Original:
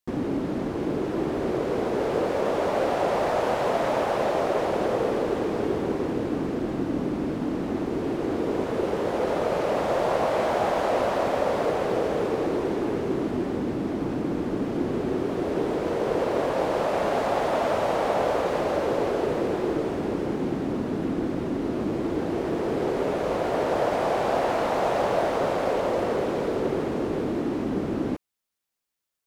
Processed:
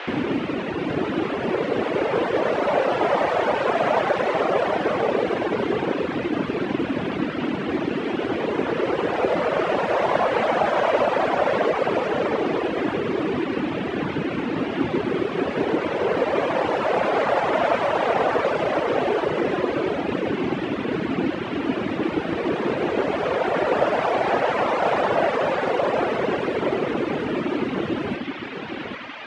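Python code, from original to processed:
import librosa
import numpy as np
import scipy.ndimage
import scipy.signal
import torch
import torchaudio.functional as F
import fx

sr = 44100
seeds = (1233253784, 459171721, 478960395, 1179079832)

p1 = scipy.signal.sosfilt(scipy.signal.butter(2, 98.0, 'highpass', fs=sr, output='sos'), x)
p2 = fx.peak_eq(p1, sr, hz=2000.0, db=6.5, octaves=1.9)
p3 = fx.quant_float(p2, sr, bits=4)
p4 = fx.high_shelf(p3, sr, hz=5100.0, db=-11.5)
p5 = p4 + 10.0 ** (-7.0 / 20.0) * np.pad(p4, (int(797 * sr / 1000.0), 0))[:len(p4)]
p6 = fx.dmg_noise_band(p5, sr, seeds[0], low_hz=360.0, high_hz=2900.0, level_db=-37.0)
p7 = p6 + fx.echo_split(p6, sr, split_hz=340.0, low_ms=162, high_ms=101, feedback_pct=52, wet_db=-6.0, dry=0)
p8 = fx.dereverb_blind(p7, sr, rt60_s=1.8)
p9 = scipy.signal.sosfilt(scipy.signal.cheby1(5, 1.0, 9500.0, 'lowpass', fs=sr, output='sos'), p8)
y = p9 * 10.0 ** (3.5 / 20.0)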